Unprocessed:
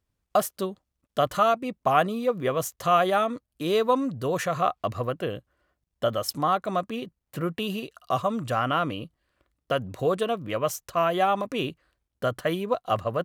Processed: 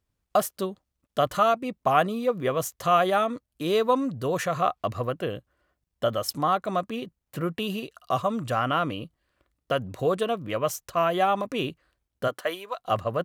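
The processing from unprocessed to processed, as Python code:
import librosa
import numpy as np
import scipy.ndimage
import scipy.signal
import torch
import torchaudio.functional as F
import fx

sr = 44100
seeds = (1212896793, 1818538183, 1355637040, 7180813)

y = fx.highpass(x, sr, hz=fx.line((12.27, 270.0), (12.78, 1100.0)), slope=12, at=(12.27, 12.78), fade=0.02)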